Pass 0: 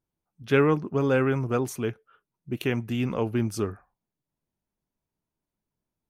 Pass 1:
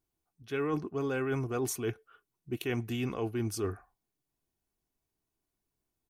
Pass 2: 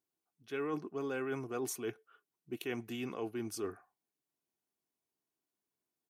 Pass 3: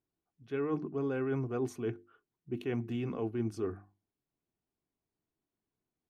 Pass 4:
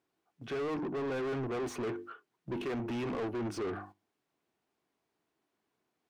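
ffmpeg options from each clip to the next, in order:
ffmpeg -i in.wav -af "highshelf=frequency=3900:gain=5.5,aecho=1:1:2.7:0.42,areverse,acompressor=threshold=-28dB:ratio=10,areverse,volume=-1dB" out.wav
ffmpeg -i in.wav -af "highpass=200,volume=-4.5dB" out.wav
ffmpeg -i in.wav -af "aemphasis=mode=reproduction:type=riaa,bandreject=frequency=50:width_type=h:width=6,bandreject=frequency=100:width_type=h:width=6,bandreject=frequency=150:width_type=h:width=6,bandreject=frequency=200:width_type=h:width=6,bandreject=frequency=250:width_type=h:width=6,bandreject=frequency=300:width_type=h:width=6,bandreject=frequency=350:width_type=h:width=6" out.wav
ffmpeg -i in.wav -filter_complex "[0:a]agate=range=-9dB:threshold=-58dB:ratio=16:detection=peak,acompressor=threshold=-44dB:ratio=1.5,asplit=2[link_01][link_02];[link_02]highpass=frequency=720:poles=1,volume=30dB,asoftclip=type=tanh:threshold=-28.5dB[link_03];[link_01][link_03]amix=inputs=2:normalize=0,lowpass=frequency=2100:poles=1,volume=-6dB" out.wav

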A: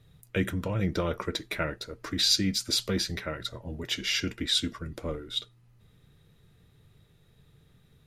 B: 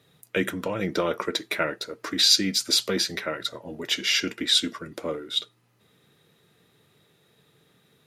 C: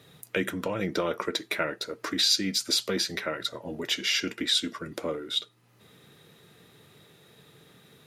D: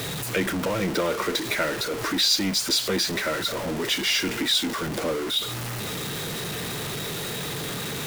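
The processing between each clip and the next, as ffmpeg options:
ffmpeg -i in.wav -af "highpass=260,volume=5.5dB" out.wav
ffmpeg -i in.wav -af "acompressor=threshold=-48dB:ratio=1.5,volume=6.5dB" out.wav
ffmpeg -i in.wav -af "aeval=exprs='val(0)+0.5*0.0531*sgn(val(0))':channel_layout=same" out.wav

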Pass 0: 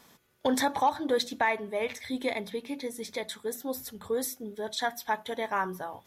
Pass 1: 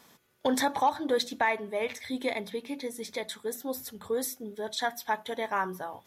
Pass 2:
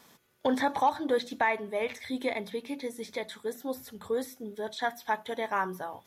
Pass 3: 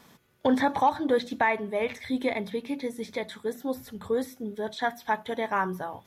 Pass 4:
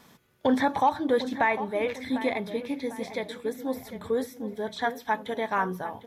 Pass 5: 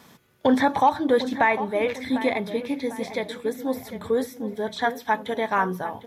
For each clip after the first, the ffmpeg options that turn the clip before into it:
ffmpeg -i in.wav -af "lowshelf=frequency=72:gain=-7.5" out.wav
ffmpeg -i in.wav -filter_complex "[0:a]acrossover=split=3200[link_01][link_02];[link_02]acompressor=threshold=-45dB:ratio=4:attack=1:release=60[link_03];[link_01][link_03]amix=inputs=2:normalize=0" out.wav
ffmpeg -i in.wav -af "bass=frequency=250:gain=6,treble=frequency=4000:gain=-4,volume=2.5dB" out.wav
ffmpeg -i in.wav -filter_complex "[0:a]asplit=2[link_01][link_02];[link_02]adelay=750,lowpass=frequency=2500:poles=1,volume=-12dB,asplit=2[link_03][link_04];[link_04]adelay=750,lowpass=frequency=2500:poles=1,volume=0.44,asplit=2[link_05][link_06];[link_06]adelay=750,lowpass=frequency=2500:poles=1,volume=0.44,asplit=2[link_07][link_08];[link_08]adelay=750,lowpass=frequency=2500:poles=1,volume=0.44[link_09];[link_01][link_03][link_05][link_07][link_09]amix=inputs=5:normalize=0" out.wav
ffmpeg -i in.wav -af "highpass=50,volume=4dB" out.wav

